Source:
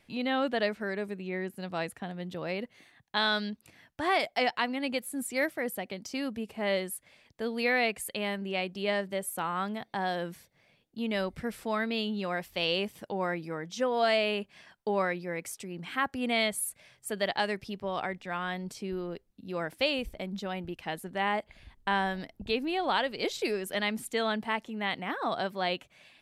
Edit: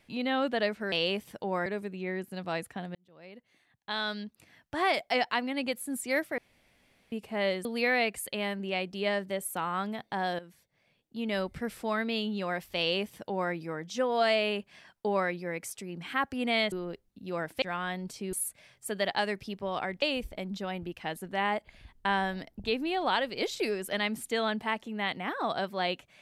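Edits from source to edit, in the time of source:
0:02.21–0:04.15: fade in
0:05.64–0:06.38: fill with room tone
0:06.91–0:07.47: remove
0:10.21–0:11.22: fade in, from −14.5 dB
0:12.60–0:13.34: duplicate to 0:00.92
0:16.54–0:18.23: swap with 0:18.94–0:19.84

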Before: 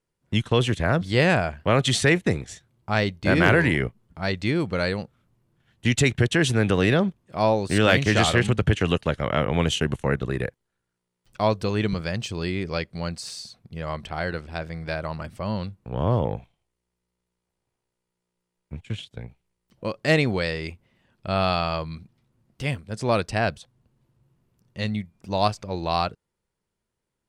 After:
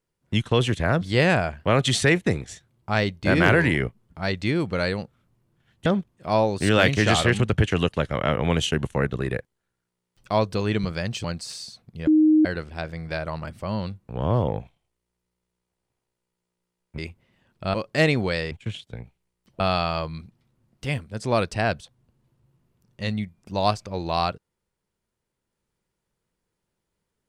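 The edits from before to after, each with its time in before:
0:05.86–0:06.95: remove
0:12.33–0:13.01: remove
0:13.84–0:14.22: beep over 310 Hz −13 dBFS
0:18.75–0:19.84: swap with 0:20.61–0:21.37

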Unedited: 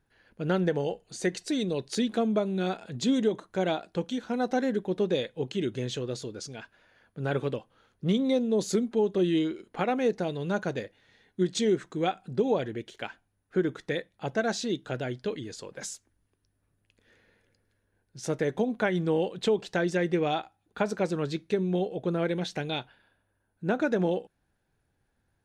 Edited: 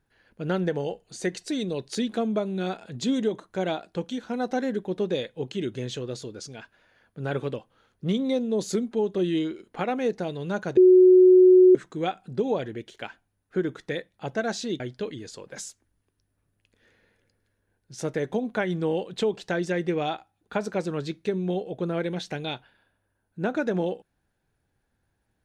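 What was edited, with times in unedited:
0:10.77–0:11.75: beep over 368 Hz −10.5 dBFS
0:14.80–0:15.05: remove

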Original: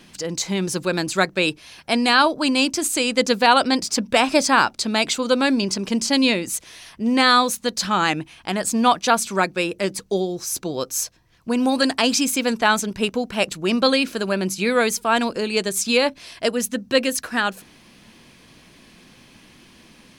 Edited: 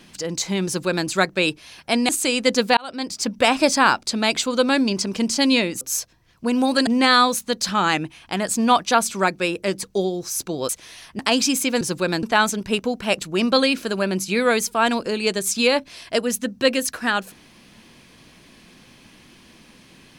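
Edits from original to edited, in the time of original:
0:00.66–0:01.08: duplicate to 0:12.53
0:02.09–0:02.81: remove
0:03.49–0:04.11: fade in
0:06.53–0:07.03: swap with 0:10.85–0:11.91

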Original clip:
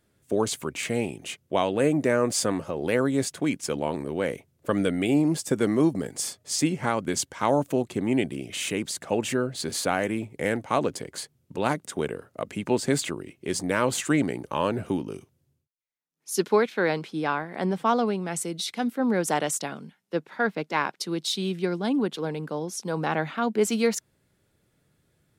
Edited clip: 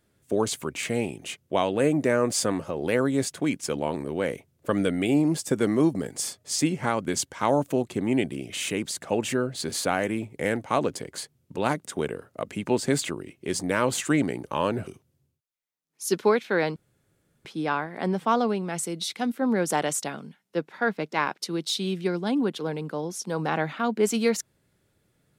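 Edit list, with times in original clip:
0:14.87–0:15.14: remove
0:17.03: splice in room tone 0.69 s

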